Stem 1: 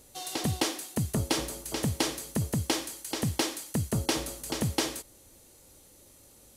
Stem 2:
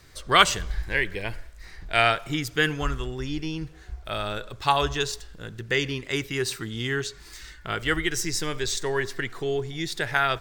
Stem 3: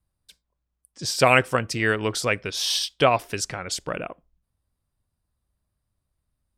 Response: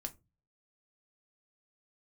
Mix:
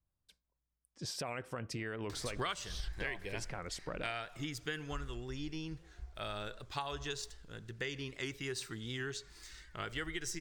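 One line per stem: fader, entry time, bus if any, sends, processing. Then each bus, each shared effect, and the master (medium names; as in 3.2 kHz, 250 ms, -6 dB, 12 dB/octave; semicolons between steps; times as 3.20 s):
mute
3.14 s -3 dB -> 3.55 s -10.5 dB, 2.10 s, bus A, no send, peaking EQ 14 kHz -8.5 dB 0.58 oct; upward compressor, threshold -41 dBFS
-8.5 dB, 0.00 s, bus A, no send, treble shelf 3.4 kHz -11.5 dB; compression, threshold -20 dBFS, peak gain reduction 7.5 dB; peak limiter -20 dBFS, peak gain reduction 9 dB
bus A: 0.0 dB, tone controls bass 0 dB, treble +3 dB; compression 10:1, threshold -35 dBFS, peak gain reduction 21.5 dB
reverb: none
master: warped record 78 rpm, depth 100 cents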